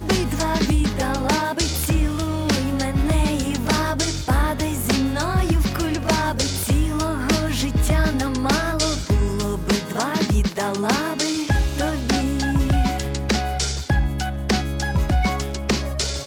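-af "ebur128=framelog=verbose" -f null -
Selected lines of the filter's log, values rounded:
Integrated loudness:
  I:         -21.6 LUFS
  Threshold: -31.6 LUFS
Loudness range:
  LRA:         1.0 LU
  Threshold: -41.5 LUFS
  LRA low:   -22.1 LUFS
  LRA high:  -21.1 LUFS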